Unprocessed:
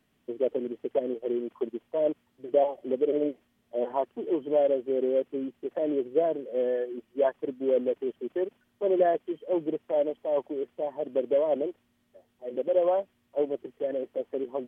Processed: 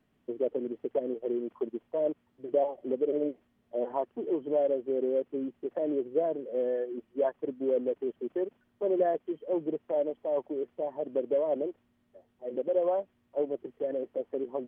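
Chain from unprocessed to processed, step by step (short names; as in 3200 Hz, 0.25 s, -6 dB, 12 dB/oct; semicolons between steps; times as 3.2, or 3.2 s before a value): high shelf 2500 Hz -11 dB; in parallel at -1.5 dB: compressor, threshold -31 dBFS, peak gain reduction 12.5 dB; on the sum: gain -5 dB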